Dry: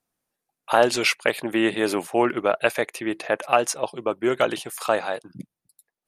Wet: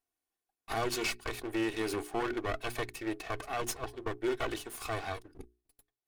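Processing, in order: minimum comb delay 2.7 ms; notches 60/120/180/240/300/360/420 Hz; limiter -15 dBFS, peak gain reduction 11 dB; gain -7.5 dB

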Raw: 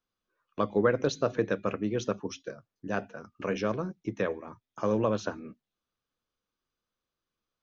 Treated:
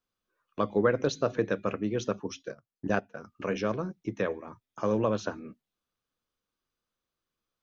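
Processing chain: 2.5–3.19 transient shaper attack +7 dB, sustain -11 dB

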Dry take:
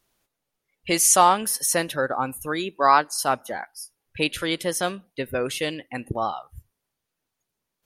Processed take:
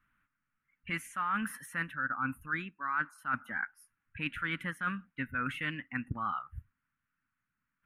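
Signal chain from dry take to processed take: EQ curve 270 Hz 0 dB, 380 Hz -20 dB, 710 Hz -18 dB, 1400 Hz +10 dB, 2700 Hz -4 dB, 4800 Hz -29 dB, 10000 Hz -20 dB; reverse; compressor 8:1, threshold -29 dBFS, peak gain reduction 18 dB; reverse; gain -1.5 dB

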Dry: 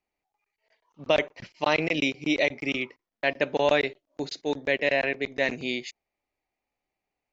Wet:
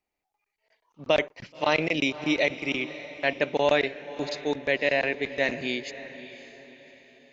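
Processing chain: diffused feedback echo 0.582 s, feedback 41%, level -14 dB

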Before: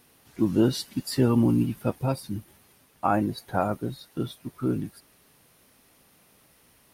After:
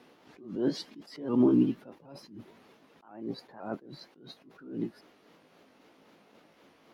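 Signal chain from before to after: repeated pitch sweeps +2.5 st, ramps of 0.257 s; three-band isolator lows -22 dB, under 200 Hz, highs -20 dB, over 5400 Hz; in parallel at +2 dB: compressor, threshold -36 dBFS, peak gain reduction 17 dB; on the sum: tilt shelf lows +4.5 dB; attack slew limiter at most 100 dB/s; gain -2.5 dB

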